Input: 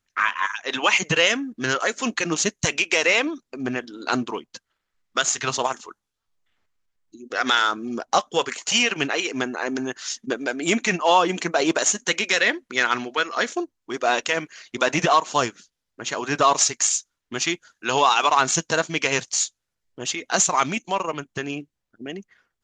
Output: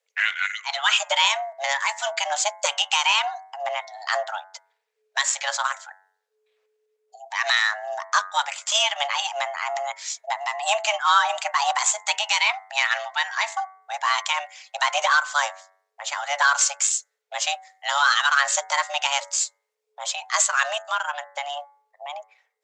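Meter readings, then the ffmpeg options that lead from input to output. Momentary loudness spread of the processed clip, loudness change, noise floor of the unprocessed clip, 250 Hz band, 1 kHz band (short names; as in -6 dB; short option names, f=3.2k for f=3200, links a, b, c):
12 LU, -0.5 dB, -81 dBFS, under -40 dB, -0.5 dB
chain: -af "afreqshift=430,bandreject=f=94.91:t=h:w=4,bandreject=f=189.82:t=h:w=4,bandreject=f=284.73:t=h:w=4,bandreject=f=379.64:t=h:w=4,bandreject=f=474.55:t=h:w=4,bandreject=f=569.46:t=h:w=4,bandreject=f=664.37:t=h:w=4,bandreject=f=759.28:t=h:w=4,bandreject=f=854.19:t=h:w=4,bandreject=f=949.1:t=h:w=4,bandreject=f=1.04401k:t=h:w=4,bandreject=f=1.13892k:t=h:w=4,bandreject=f=1.23383k:t=h:w=4,bandreject=f=1.32874k:t=h:w=4,bandreject=f=1.42365k:t=h:w=4,bandreject=f=1.51856k:t=h:w=4,bandreject=f=1.61347k:t=h:w=4,bandreject=f=1.70838k:t=h:w=4,bandreject=f=1.80329k:t=h:w=4,bandreject=f=1.8982k:t=h:w=4,bandreject=f=1.99311k:t=h:w=4,bandreject=f=2.08802k:t=h:w=4,bandreject=f=2.18293k:t=h:w=4,volume=-1dB"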